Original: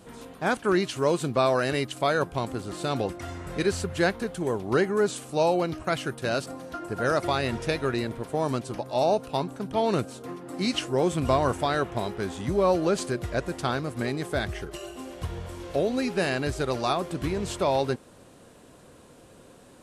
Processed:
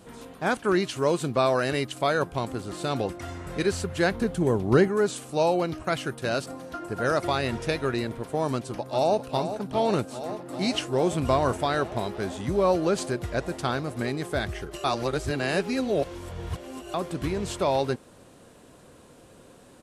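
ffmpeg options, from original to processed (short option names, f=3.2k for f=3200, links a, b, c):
-filter_complex "[0:a]asettb=1/sr,asplit=3[a][b][c];[a]atrim=end=4.114[d];[b]atrim=start=4.11:end=4.88,asetpts=PTS-STARTPTS,afade=t=in:d=0.004:c=qsin,afade=t=out:st=0.766:d=0.004:c=qsin,lowshelf=f=320:g=9.5[e];[c]atrim=start=4.876[f];[d][e]acrossfade=d=0.004:c1=hsin:c2=qsin[g];[g][f]acrossfade=d=0.004:c1=qsin:c2=hsin,asplit=2[h][i];[i]afade=t=in:st=8.52:d=0.01,afade=t=out:st=9.17:d=0.01,aecho=0:1:400|800|1200|1600|2000|2400|2800|3200|3600|4000|4400|4800:0.316228|0.268794|0.228475|0.194203|0.165073|0.140312|0.119265|0.101375|0.0861691|0.0732437|0.0622572|0.0529186[j];[h][j]amix=inputs=2:normalize=0,asplit=3[k][l][m];[k]atrim=end=14.842[n];[l]atrim=start=14.838:end=16.942,asetpts=PTS-STARTPTS,areverse[o];[m]atrim=start=16.938[p];[n][o]acrossfade=d=0.004:c1=hsin:c2=hsin[q];[q][p]acrossfade=d=0.004:c1=hsin:c2=hsin"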